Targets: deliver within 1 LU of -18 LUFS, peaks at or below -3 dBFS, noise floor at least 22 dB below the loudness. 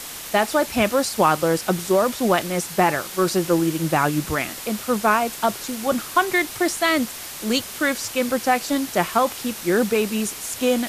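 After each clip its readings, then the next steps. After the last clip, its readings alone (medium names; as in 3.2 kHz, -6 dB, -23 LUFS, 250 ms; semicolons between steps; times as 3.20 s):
noise floor -35 dBFS; noise floor target -44 dBFS; loudness -21.5 LUFS; peak level -5.0 dBFS; loudness target -18.0 LUFS
-> noise reduction 9 dB, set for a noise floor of -35 dBFS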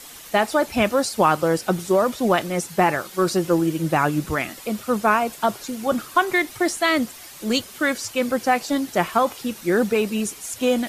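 noise floor -41 dBFS; noise floor target -44 dBFS
-> noise reduction 6 dB, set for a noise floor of -41 dBFS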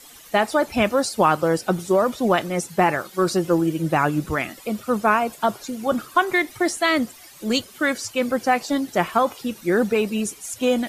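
noise floor -45 dBFS; loudness -22.0 LUFS; peak level -5.5 dBFS; loudness target -18.0 LUFS
-> trim +4 dB; peak limiter -3 dBFS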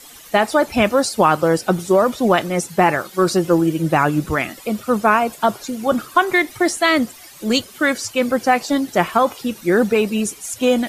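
loudness -18.0 LUFS; peak level -3.0 dBFS; noise floor -41 dBFS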